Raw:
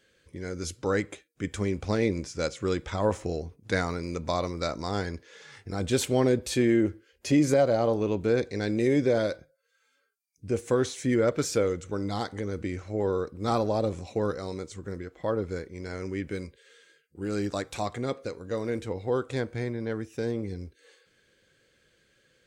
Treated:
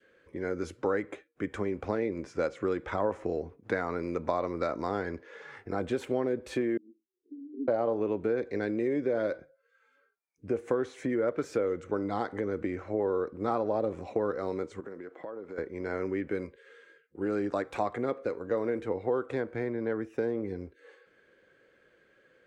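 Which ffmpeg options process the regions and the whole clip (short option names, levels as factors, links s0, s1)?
-filter_complex "[0:a]asettb=1/sr,asplit=3[s0][s1][s2];[s0]atrim=end=6.774[s3];[s1]atrim=start=6.77:end=7.68,asetpts=PTS-STARTPTS,afade=t=in:d=0.004:c=qsin,afade=t=out:st=0.906:d=0.004:c=qsin,aemphasis=mode=production:type=riaa,aeval=exprs='val(0)*sin(2*PI*430*n/s)':c=same,asuperpass=centerf=320:order=20:qfactor=1.4[s4];[s2]atrim=start=7.676[s5];[s3][s4]acrossfade=d=0.004:c1=hsin:c2=qsin[s6];[s6][s5]acrossfade=d=0.004:c1=qsin:c2=hsin,asettb=1/sr,asplit=3[s7][s8][s9];[s7]atrim=end=14.804[s10];[s8]atrim=start=14.8:end=15.58,asetpts=PTS-STARTPTS,afade=t=in:d=0.004:c=qsin,afade=t=out:st=0.776:d=0.004:c=qsin,highpass=180,acompressor=threshold=0.00891:ratio=10:attack=3.2:release=140:knee=1:detection=peak[s11];[s9]atrim=start=15.576[s12];[s10][s11]acrossfade=d=0.004:c1=hsin:c2=qsin[s13];[s13][s12]acrossfade=d=0.004:c1=qsin:c2=hsin,adynamicequalizer=threshold=0.01:dfrequency=810:dqfactor=1.2:tfrequency=810:tqfactor=1.2:attack=5:release=100:ratio=0.375:range=2:mode=cutabove:tftype=bell,acompressor=threshold=0.0316:ratio=6,acrossover=split=250 2100:gain=0.224 1 0.1[s14][s15][s16];[s14][s15][s16]amix=inputs=3:normalize=0,volume=2"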